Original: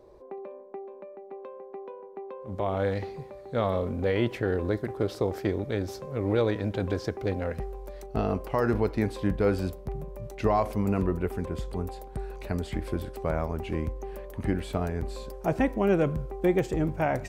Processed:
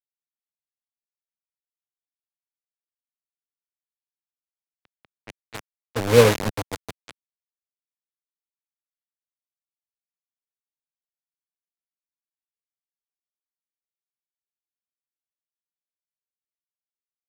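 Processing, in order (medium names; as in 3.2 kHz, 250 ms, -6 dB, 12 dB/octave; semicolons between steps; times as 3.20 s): Doppler pass-by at 6.19 s, 12 m/s, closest 5.2 m; rippled EQ curve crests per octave 0.96, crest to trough 13 dB; bit crusher 4-bit; level-controlled noise filter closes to 2.6 kHz, open at -31 dBFS; three bands expanded up and down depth 100%; trim -1 dB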